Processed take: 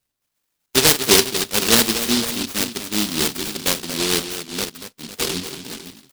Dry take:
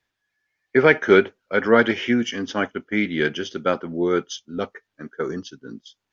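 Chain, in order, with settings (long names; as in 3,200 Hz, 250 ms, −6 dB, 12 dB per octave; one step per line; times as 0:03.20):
0:05.15–0:05.71: double-tracking delay 23 ms −2.5 dB
on a send: multi-tap delay 44/235/502 ms −14.5/−10.5/−13 dB
on the sum: short delay modulated by noise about 3,800 Hz, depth 0.44 ms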